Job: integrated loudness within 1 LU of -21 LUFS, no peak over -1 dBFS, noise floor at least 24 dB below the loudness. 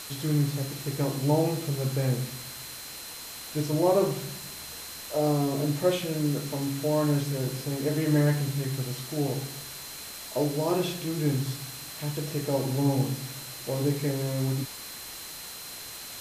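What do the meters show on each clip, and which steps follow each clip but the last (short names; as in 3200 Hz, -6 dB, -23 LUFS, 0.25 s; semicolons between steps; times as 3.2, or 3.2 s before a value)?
steady tone 4100 Hz; tone level -46 dBFS; noise floor -41 dBFS; noise floor target -53 dBFS; loudness -29.0 LUFS; peak -11.5 dBFS; loudness target -21.0 LUFS
-> notch 4100 Hz, Q 30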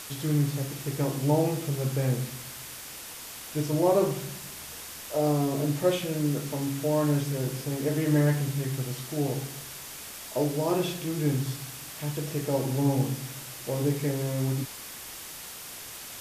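steady tone none; noise floor -42 dBFS; noise floor target -53 dBFS
-> denoiser 11 dB, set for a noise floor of -42 dBFS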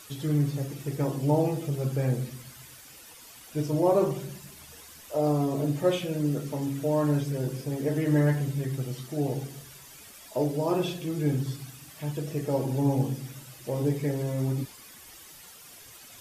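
noise floor -49 dBFS; noise floor target -53 dBFS
-> denoiser 6 dB, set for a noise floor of -49 dBFS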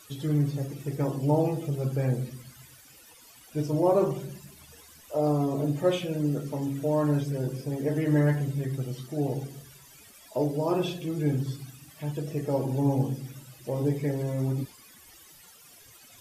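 noise floor -53 dBFS; loudness -28.5 LUFS; peak -12.0 dBFS; loudness target -21.0 LUFS
-> gain +7.5 dB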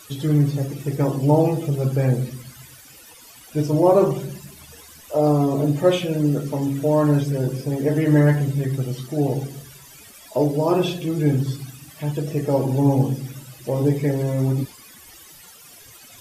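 loudness -21.0 LUFS; peak -4.5 dBFS; noise floor -46 dBFS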